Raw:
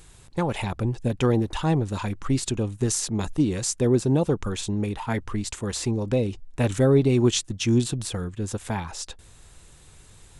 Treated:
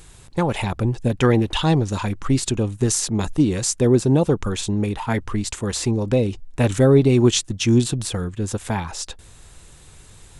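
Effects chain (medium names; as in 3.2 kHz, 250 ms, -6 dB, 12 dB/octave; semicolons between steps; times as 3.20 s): 1.21–1.94 s: peaking EQ 1.7 kHz -> 6.5 kHz +10 dB 0.67 oct; trim +4.5 dB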